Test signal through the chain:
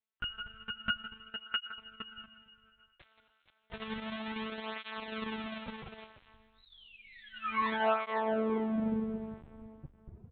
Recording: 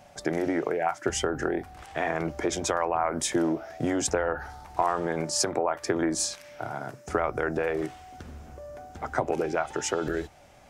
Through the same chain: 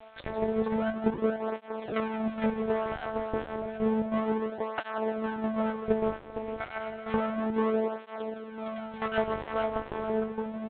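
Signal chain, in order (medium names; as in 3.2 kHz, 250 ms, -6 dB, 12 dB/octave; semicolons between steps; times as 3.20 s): reverb removal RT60 0.68 s; low-pass that closes with the level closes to 540 Hz, closed at -27 dBFS; comb 5.5 ms, depth 48%; in parallel at +1.5 dB: gain riding within 5 dB 2 s; on the sum: half-wave rectifier; multi-tap echo 61/169/464 ms -20/-10/-6 dB; plate-style reverb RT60 2.9 s, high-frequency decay 0.85×, DRR 7.5 dB; monotone LPC vocoder at 8 kHz 220 Hz; cancelling through-zero flanger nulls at 0.31 Hz, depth 5.3 ms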